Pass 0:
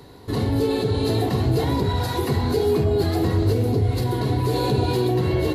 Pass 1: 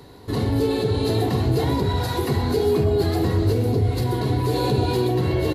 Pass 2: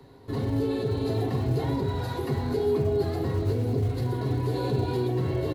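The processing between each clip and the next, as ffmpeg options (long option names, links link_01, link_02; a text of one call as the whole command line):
ffmpeg -i in.wav -af "aecho=1:1:126:0.178" out.wav
ffmpeg -i in.wav -filter_complex "[0:a]highshelf=frequency=2900:gain=-8,aecho=1:1:7.5:0.35,acrossover=split=130|940[link_01][link_02][link_03];[link_01]acrusher=bits=6:mode=log:mix=0:aa=0.000001[link_04];[link_04][link_02][link_03]amix=inputs=3:normalize=0,volume=-6.5dB" out.wav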